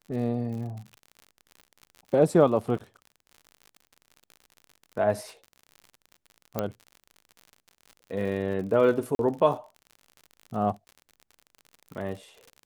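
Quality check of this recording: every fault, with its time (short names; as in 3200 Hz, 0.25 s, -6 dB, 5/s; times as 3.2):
crackle 61/s -37 dBFS
6.59 pop -13 dBFS
9.15–9.19 gap 42 ms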